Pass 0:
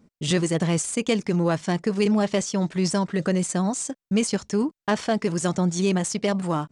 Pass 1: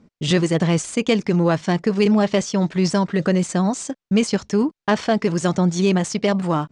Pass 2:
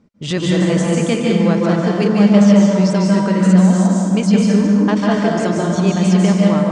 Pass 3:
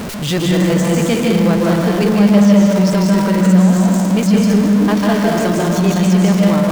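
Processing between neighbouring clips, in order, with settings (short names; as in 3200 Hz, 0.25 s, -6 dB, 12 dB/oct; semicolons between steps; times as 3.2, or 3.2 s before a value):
LPF 5800 Hz 12 dB/oct; gain +4.5 dB
reverb RT60 2.4 s, pre-delay 0.142 s, DRR -3.5 dB; gain -2.5 dB
zero-crossing step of -17.5 dBFS; gain -1 dB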